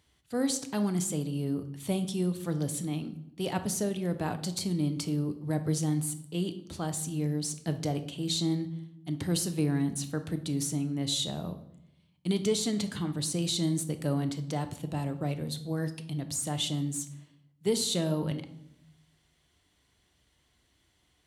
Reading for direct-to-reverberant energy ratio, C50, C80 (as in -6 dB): 8.5 dB, 12.5 dB, 16.0 dB